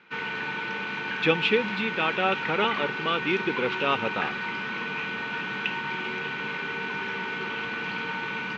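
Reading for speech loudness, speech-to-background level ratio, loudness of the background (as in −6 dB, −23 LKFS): −27.0 LKFS, 3.5 dB, −30.5 LKFS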